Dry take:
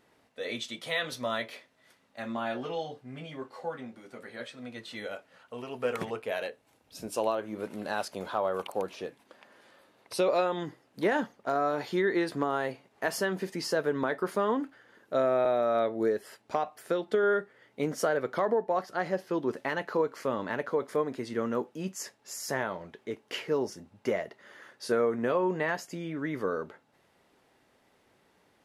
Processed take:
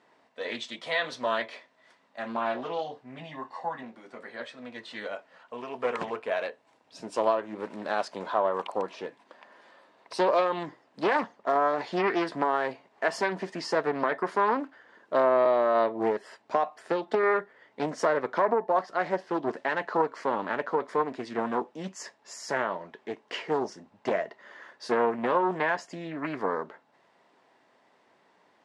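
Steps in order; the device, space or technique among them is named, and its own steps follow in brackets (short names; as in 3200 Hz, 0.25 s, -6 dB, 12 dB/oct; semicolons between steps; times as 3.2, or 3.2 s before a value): full-range speaker at full volume (Doppler distortion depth 0.49 ms; speaker cabinet 180–7700 Hz, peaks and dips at 670 Hz +5 dB, 1000 Hz +8 dB, 1800 Hz +4 dB, 6400 Hz -3 dB); 3.19–3.83 comb 1.1 ms, depth 54%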